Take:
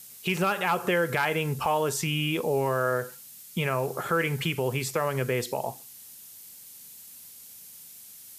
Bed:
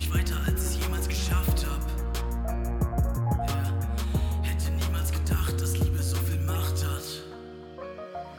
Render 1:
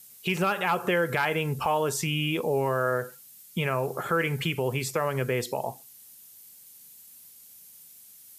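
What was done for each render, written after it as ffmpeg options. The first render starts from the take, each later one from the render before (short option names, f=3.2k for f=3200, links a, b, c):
-af "afftdn=nr=6:nf=-48"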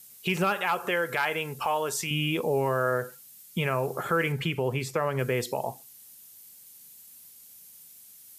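-filter_complex "[0:a]asettb=1/sr,asplit=3[a][b][c];[a]atrim=end=0.574[d];[b]atrim=start=0.57:end=2.11,asetpts=PTS-STARTPTS,afade=t=in:d=0.004:c=qsin,afade=t=out:st=1.536:d=0.004:c=qsin,lowshelf=f=300:g=-12[e];[c]atrim=start=2.106[f];[d][e]acrossfade=d=0.004:c1=hsin:c2=qsin[g];[g][f]acrossfade=d=0.004:c1=qsin:c2=hsin,asettb=1/sr,asplit=3[h][i][j];[h]atrim=end=4.324[k];[i]atrim=start=4.32:end=5.19,asetpts=PTS-STARTPTS,afade=t=in:d=0.004:c=qsin,afade=t=out:st=0.866:d=0.004:c=qsin,highshelf=f=4.9k:g=-8[l];[j]atrim=start=5.186[m];[k][l]acrossfade=d=0.004:c1=hsin:c2=qsin[n];[n][m]acrossfade=d=0.004:c1=qsin:c2=hsin"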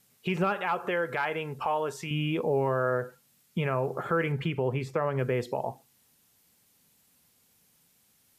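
-af "lowpass=f=1.5k:p=1"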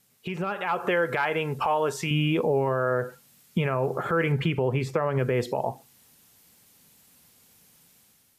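-af "alimiter=limit=-22.5dB:level=0:latency=1:release=162,dynaudnorm=f=420:g=3:m=7.5dB"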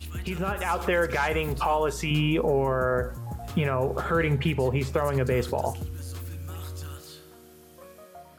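-filter_complex "[1:a]volume=-9.5dB[a];[0:a][a]amix=inputs=2:normalize=0"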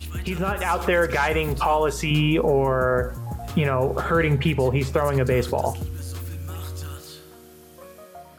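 -af "volume=4dB"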